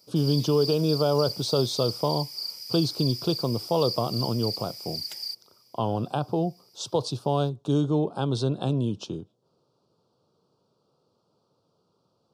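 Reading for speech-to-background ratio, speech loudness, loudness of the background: 6.0 dB, -26.5 LUFS, -32.5 LUFS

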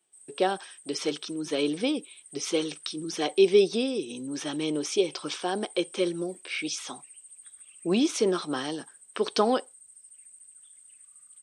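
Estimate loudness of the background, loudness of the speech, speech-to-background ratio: -48.0 LUFS, -28.5 LUFS, 19.5 dB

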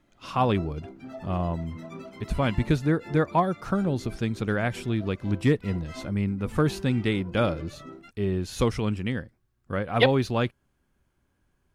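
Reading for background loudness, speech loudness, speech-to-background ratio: -44.0 LUFS, -27.0 LUFS, 17.0 dB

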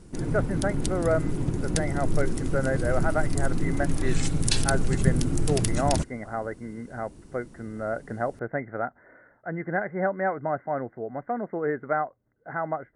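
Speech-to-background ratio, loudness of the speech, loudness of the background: -2.0 dB, -30.5 LUFS, -28.5 LUFS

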